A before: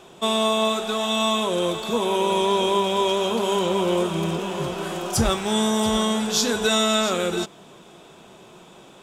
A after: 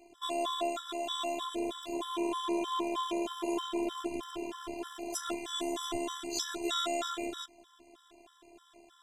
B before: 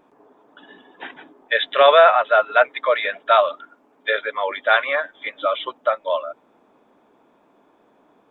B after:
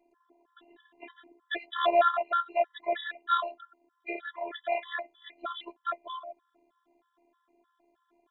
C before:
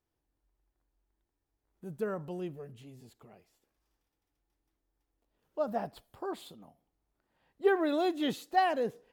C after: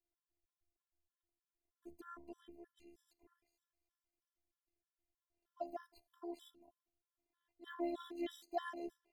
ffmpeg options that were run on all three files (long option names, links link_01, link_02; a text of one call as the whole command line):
ffmpeg -i in.wav -af "aeval=exprs='val(0)*sin(2*PI*37*n/s)':channel_layout=same,afftfilt=real='hypot(re,im)*cos(PI*b)':imag='0':win_size=512:overlap=0.75,afftfilt=real='re*gt(sin(2*PI*3.2*pts/sr)*(1-2*mod(floor(b*sr/1024/1000),2)),0)':imag='im*gt(sin(2*PI*3.2*pts/sr)*(1-2*mod(floor(b*sr/1024/1000),2)),0)':win_size=1024:overlap=0.75,volume=-3.5dB" out.wav